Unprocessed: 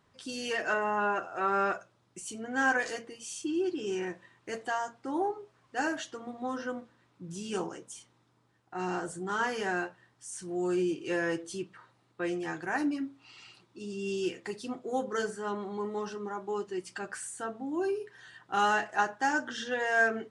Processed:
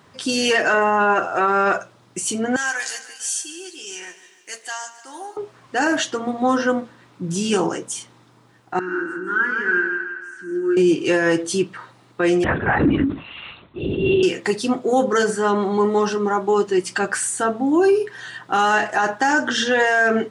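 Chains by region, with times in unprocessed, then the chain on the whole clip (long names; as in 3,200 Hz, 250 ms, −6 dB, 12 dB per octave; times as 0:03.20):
0:02.56–0:05.37: first difference + repeating echo 149 ms, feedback 58%, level −15 dB
0:08.79–0:10.77: pair of resonant band-passes 690 Hz, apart 2.3 octaves + echo with a time of its own for lows and highs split 610 Hz, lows 91 ms, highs 164 ms, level −5 dB
0:12.44–0:14.23: linear-prediction vocoder at 8 kHz whisper + level that may fall only so fast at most 120 dB per second
whole clip: high-pass filter 91 Hz; boost into a limiter +25 dB; level −8 dB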